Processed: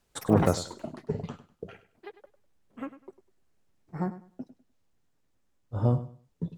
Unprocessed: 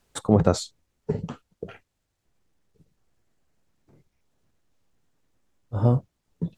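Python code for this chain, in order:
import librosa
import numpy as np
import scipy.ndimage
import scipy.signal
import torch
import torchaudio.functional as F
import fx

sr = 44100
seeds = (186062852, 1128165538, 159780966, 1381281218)

y = fx.echo_pitch(x, sr, ms=110, semitones=7, count=3, db_per_echo=-6.0)
y = fx.echo_feedback(y, sr, ms=100, feedback_pct=24, wet_db=-14.5)
y = y * 10.0 ** (-4.5 / 20.0)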